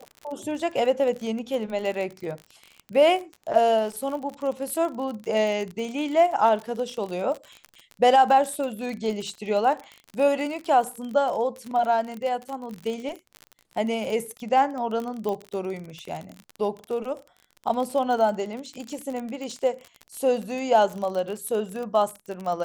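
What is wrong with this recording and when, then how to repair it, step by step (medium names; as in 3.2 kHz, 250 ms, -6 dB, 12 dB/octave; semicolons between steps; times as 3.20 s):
crackle 42 per s -30 dBFS
15.29 s: pop -18 dBFS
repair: de-click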